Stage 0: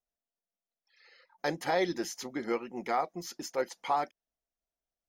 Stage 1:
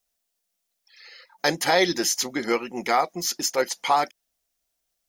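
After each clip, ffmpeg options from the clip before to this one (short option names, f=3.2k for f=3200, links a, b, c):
-af "highshelf=f=2.3k:g=11.5,volume=7dB"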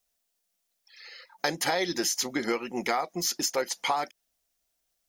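-af "acompressor=threshold=-24dB:ratio=6"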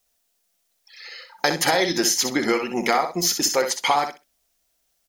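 -af "aecho=1:1:63|126|189:0.398|0.0637|0.0102,volume=7dB"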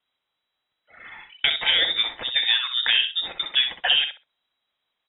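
-af "lowpass=f=3.3k:t=q:w=0.5098,lowpass=f=3.3k:t=q:w=0.6013,lowpass=f=3.3k:t=q:w=0.9,lowpass=f=3.3k:t=q:w=2.563,afreqshift=-3900"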